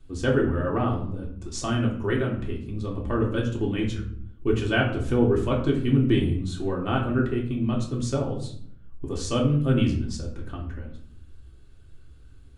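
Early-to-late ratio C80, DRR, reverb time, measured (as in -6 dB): 11.0 dB, -2.0 dB, 0.65 s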